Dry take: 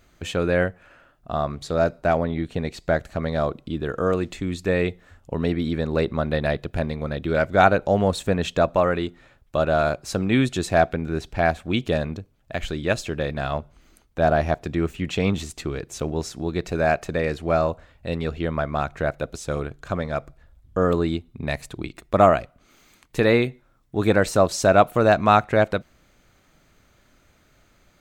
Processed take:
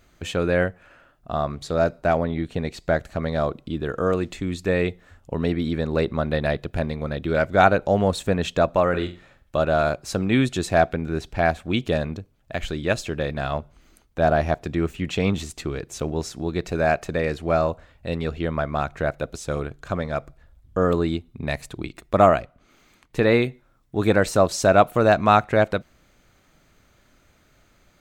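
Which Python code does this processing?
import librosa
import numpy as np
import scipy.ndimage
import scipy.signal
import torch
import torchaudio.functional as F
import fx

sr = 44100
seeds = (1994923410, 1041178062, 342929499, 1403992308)

y = fx.room_flutter(x, sr, wall_m=7.7, rt60_s=0.32, at=(8.89, 9.58))
y = fx.high_shelf(y, sr, hz=4900.0, db=-7.5, at=(22.4, 23.32))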